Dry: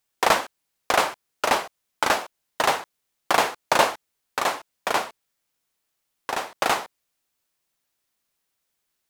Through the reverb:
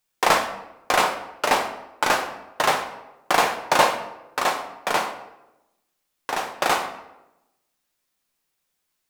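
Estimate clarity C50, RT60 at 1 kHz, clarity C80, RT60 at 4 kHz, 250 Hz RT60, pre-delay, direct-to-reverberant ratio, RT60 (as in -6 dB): 9.0 dB, 0.90 s, 11.5 dB, 0.60 s, 1.0 s, 6 ms, 3.5 dB, 0.95 s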